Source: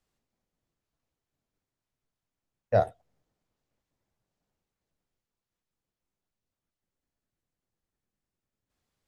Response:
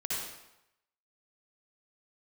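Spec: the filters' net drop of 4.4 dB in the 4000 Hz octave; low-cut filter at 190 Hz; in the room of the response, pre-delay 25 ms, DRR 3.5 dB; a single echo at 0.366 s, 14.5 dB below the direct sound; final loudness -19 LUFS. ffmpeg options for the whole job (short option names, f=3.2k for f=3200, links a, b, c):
-filter_complex "[0:a]highpass=190,equalizer=f=4k:t=o:g=-5,aecho=1:1:366:0.188,asplit=2[a][b];[1:a]atrim=start_sample=2205,adelay=25[c];[b][c]afir=irnorm=-1:irlink=0,volume=-8.5dB[d];[a][d]amix=inputs=2:normalize=0,volume=10.5dB"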